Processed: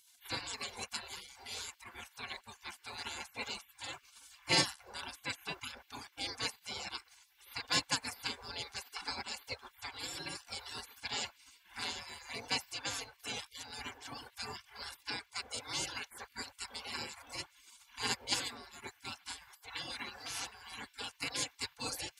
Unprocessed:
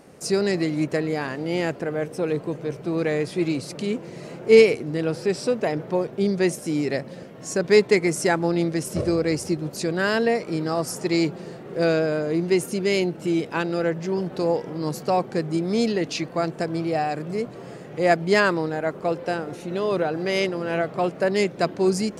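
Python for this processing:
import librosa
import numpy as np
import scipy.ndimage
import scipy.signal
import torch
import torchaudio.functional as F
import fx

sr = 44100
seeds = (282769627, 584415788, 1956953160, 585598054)

y = fx.dereverb_blind(x, sr, rt60_s=1.0)
y = fx.spec_gate(y, sr, threshold_db=-30, keep='weak')
y = fx.notch_comb(y, sr, f0_hz=630.0)
y = y * 10.0 ** (5.5 / 20.0)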